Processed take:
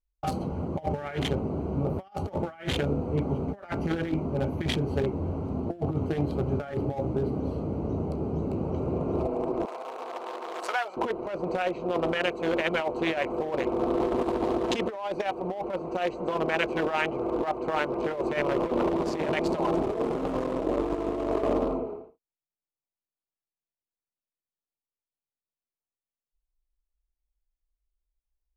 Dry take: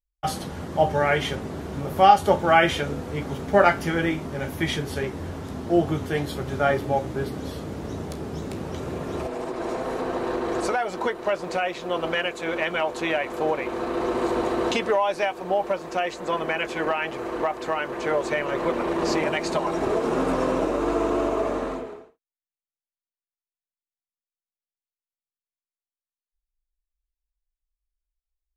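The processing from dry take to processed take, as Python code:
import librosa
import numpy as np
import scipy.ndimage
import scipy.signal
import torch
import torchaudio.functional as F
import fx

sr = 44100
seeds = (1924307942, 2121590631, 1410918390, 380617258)

y = fx.wiener(x, sr, points=25)
y = fx.highpass(y, sr, hz=1000.0, slope=12, at=(9.65, 10.97))
y = fx.over_compress(y, sr, threshold_db=-27.0, ratio=-0.5)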